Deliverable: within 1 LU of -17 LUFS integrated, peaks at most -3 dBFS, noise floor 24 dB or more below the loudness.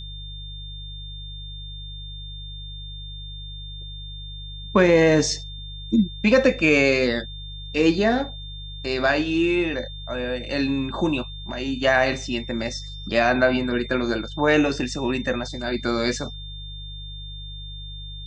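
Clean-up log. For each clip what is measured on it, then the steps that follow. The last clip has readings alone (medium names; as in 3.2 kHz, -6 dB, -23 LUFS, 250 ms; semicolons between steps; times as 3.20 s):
hum 50 Hz; highest harmonic 150 Hz; hum level -34 dBFS; steady tone 3.6 kHz; tone level -38 dBFS; loudness -22.0 LUFS; peak level -5.0 dBFS; loudness target -17.0 LUFS
-> de-hum 50 Hz, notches 3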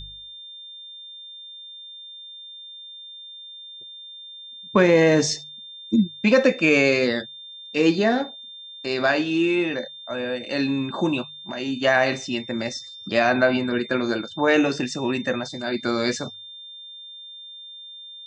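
hum not found; steady tone 3.6 kHz; tone level -38 dBFS
-> band-stop 3.6 kHz, Q 30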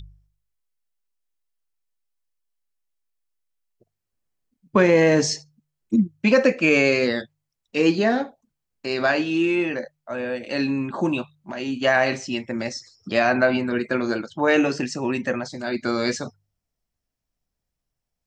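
steady tone not found; loudness -22.0 LUFS; peak level -5.0 dBFS; loudness target -17.0 LUFS
-> trim +5 dB; peak limiter -3 dBFS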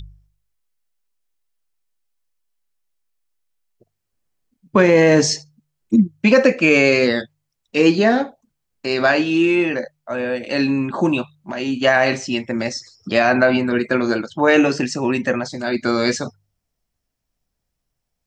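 loudness -17.5 LUFS; peak level -3.0 dBFS; noise floor -77 dBFS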